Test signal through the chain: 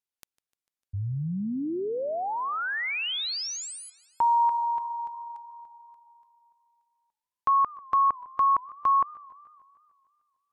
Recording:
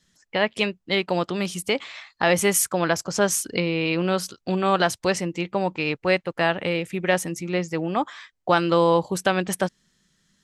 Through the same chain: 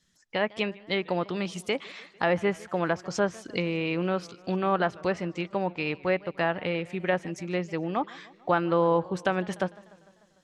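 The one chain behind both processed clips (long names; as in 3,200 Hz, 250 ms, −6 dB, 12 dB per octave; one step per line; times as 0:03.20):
treble cut that deepens with the level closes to 2,000 Hz, closed at −17.5 dBFS
feedback echo with a swinging delay time 149 ms, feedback 63%, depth 180 cents, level −22.5 dB
level −4.5 dB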